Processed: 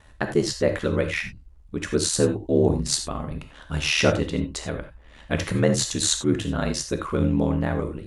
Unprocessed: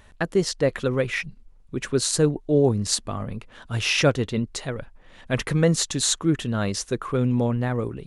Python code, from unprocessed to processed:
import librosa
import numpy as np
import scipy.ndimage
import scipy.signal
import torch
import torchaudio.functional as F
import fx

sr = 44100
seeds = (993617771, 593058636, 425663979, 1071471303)

y = x * np.sin(2.0 * np.pi * 38.0 * np.arange(len(x)) / sr)
y = fx.rev_gated(y, sr, seeds[0], gate_ms=110, shape='flat', drr_db=6.0)
y = y * 10.0 ** (2.0 / 20.0)